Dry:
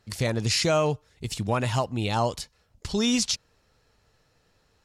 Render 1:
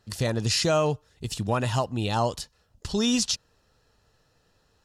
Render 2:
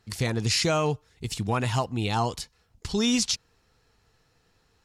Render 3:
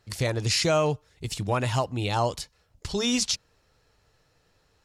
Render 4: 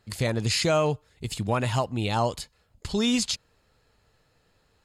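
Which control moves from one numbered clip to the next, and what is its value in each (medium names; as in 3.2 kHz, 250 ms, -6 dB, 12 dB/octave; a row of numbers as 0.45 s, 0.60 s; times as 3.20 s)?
band-stop, frequency: 2.2 kHz, 580 Hz, 220 Hz, 5.7 kHz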